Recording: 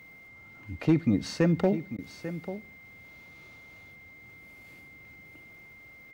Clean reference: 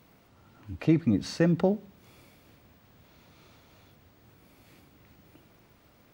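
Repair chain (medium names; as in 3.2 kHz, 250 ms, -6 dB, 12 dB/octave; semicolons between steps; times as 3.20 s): clip repair -14 dBFS; band-stop 2.1 kHz, Q 30; interpolate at 1.97 s, 13 ms; inverse comb 843 ms -12.5 dB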